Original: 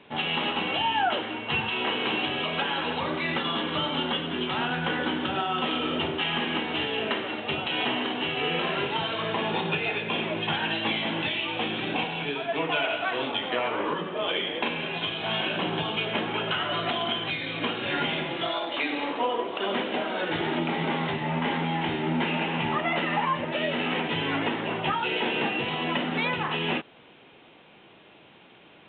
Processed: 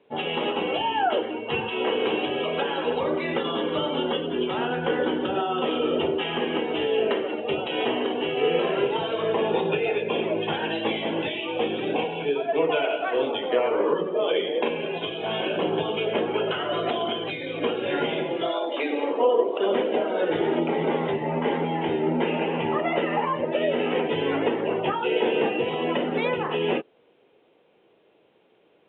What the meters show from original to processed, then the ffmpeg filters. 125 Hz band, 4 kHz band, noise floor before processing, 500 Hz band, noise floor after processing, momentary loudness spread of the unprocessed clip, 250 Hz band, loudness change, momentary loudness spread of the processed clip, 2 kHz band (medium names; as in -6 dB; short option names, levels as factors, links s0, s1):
-1.5 dB, -3.5 dB, -53 dBFS, +8.0 dB, -61 dBFS, 3 LU, +2.5 dB, +2.0 dB, 4 LU, -3.0 dB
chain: -af "afftdn=nr=12:nf=-35,equalizer=f=460:w=1.3:g=14,volume=0.708"